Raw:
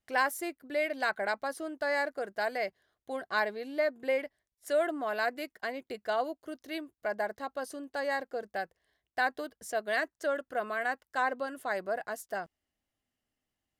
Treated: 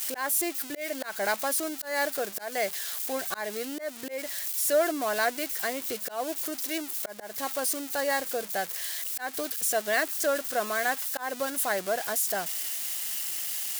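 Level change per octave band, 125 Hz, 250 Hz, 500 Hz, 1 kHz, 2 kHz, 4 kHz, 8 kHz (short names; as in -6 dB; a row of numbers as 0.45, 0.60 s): n/a, +4.0 dB, +2.0 dB, +1.0 dB, +1.5 dB, +9.0 dB, +20.0 dB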